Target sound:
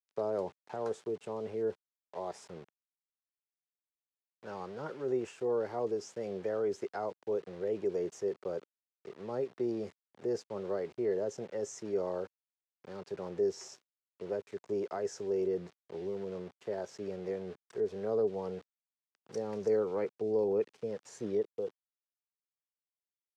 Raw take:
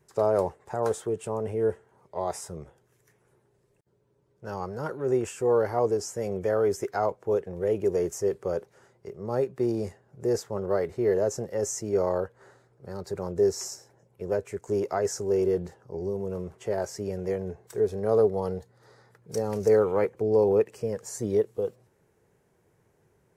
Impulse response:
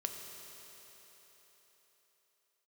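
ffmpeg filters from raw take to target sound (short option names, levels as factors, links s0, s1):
-filter_complex "[0:a]aeval=exprs='val(0)*gte(abs(val(0)),0.00708)':c=same,acrossover=split=450|3000[s0][s1][s2];[s1]acompressor=threshold=0.0178:ratio=2[s3];[s0][s3][s2]amix=inputs=3:normalize=0,highpass=180,lowpass=4700,volume=0.501"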